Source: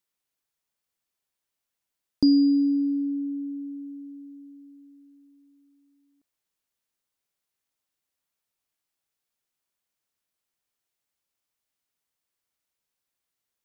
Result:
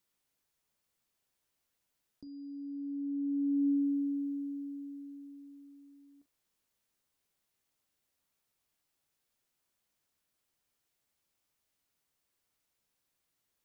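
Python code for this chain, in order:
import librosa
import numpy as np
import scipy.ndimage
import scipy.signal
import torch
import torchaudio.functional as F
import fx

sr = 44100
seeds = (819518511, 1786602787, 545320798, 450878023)

p1 = fx.low_shelf(x, sr, hz=440.0, db=4.5)
p2 = fx.over_compress(p1, sr, threshold_db=-32.0, ratio=-1.0)
p3 = p2 + fx.room_early_taps(p2, sr, ms=(14, 42), db=(-11.5, -15.0), dry=0)
y = F.gain(torch.from_numpy(p3), -6.5).numpy()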